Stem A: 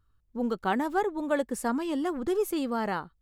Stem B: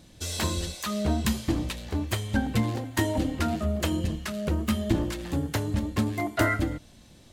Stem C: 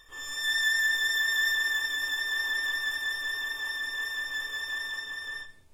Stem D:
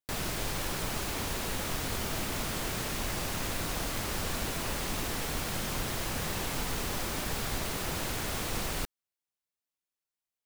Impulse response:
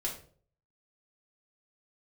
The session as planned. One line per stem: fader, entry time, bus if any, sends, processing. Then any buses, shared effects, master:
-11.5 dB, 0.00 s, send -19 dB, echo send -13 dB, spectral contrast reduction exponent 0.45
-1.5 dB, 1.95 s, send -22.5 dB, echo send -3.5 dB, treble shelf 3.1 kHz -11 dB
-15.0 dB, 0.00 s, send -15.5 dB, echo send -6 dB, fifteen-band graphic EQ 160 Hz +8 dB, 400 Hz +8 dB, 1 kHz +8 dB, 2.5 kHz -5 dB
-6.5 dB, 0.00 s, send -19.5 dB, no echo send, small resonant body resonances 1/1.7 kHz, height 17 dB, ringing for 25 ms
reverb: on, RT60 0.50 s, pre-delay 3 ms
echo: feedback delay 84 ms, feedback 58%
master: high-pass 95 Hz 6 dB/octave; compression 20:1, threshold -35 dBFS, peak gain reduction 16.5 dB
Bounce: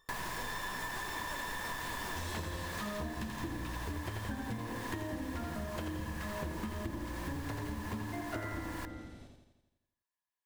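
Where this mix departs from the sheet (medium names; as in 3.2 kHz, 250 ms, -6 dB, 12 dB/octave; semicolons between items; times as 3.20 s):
stem A -11.5 dB -> -17.5 dB; master: missing high-pass 95 Hz 6 dB/octave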